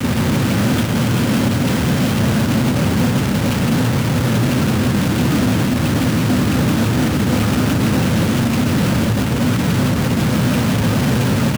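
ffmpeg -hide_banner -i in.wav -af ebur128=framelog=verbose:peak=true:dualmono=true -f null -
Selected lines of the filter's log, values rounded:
Integrated loudness:
  I:         -13.4 LUFS
  Threshold: -23.4 LUFS
Loudness range:
  LRA:         0.3 LU
  Threshold: -33.4 LUFS
  LRA low:   -13.5 LUFS
  LRA high:  -13.2 LUFS
True peak:
  Peak:       -5.9 dBFS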